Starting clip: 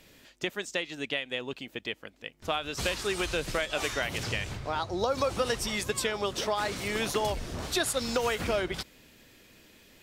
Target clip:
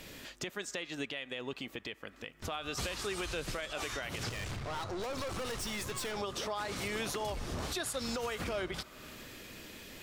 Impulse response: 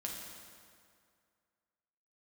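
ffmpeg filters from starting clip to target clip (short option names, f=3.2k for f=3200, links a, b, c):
-filter_complex "[0:a]asplit=2[a][b];[b]bandpass=f=1.2k:t=q:w=4.9:csg=0[c];[1:a]atrim=start_sample=2205,asetrate=52920,aresample=44100[d];[c][d]afir=irnorm=-1:irlink=0,volume=-5.5dB[e];[a][e]amix=inputs=2:normalize=0,asettb=1/sr,asplit=3[f][g][h];[f]atrim=end=4.294[i];[g]atrim=start=4.29:end=6.17,asetpts=PTS-STARTPTS,afade=t=in:d=0.004:c=qsin,afade=t=out:st=1.876:d=0.004:c=qsin,aeval=exprs='(tanh(70.8*val(0)+0.4)-tanh(0.4))/70.8':c=same[j];[h]atrim=start=6.166[k];[i][j]acrossfade=d=0.004:c1=hsin:c2=qsin[l];[l][k]acrossfade=d=0.004:c1=qsin:c2=hsin,acompressor=threshold=-46dB:ratio=2.5,alimiter=level_in=10.5dB:limit=-24dB:level=0:latency=1:release=37,volume=-10.5dB,volume=7.5dB"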